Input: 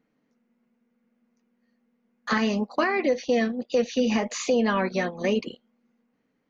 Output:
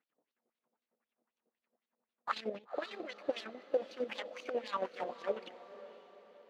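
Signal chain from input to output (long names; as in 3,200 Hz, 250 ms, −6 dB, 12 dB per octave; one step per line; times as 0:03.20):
running median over 25 samples
0:04.94–0:05.46: hum removal 47.69 Hz, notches 29
harmonic and percussive parts rebalanced harmonic −11 dB
0:02.33–0:02.98: octave-band graphic EQ 125/250/500/1,000/2,000/4,000 Hz +9/+5/+11/−8/+4/+5 dB
downward compressor 5 to 1, threshold −31 dBFS, peak gain reduction 15 dB
square-wave tremolo 11 Hz, depth 65%, duty 45%
auto-filter band-pass sine 3.9 Hz 540–3,900 Hz
on a send: feedback delay with all-pass diffusion 513 ms, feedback 47%, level −14 dB
on the sum: level +9 dB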